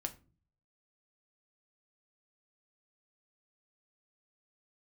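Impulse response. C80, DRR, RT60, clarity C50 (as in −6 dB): 21.5 dB, 5.5 dB, non-exponential decay, 16.5 dB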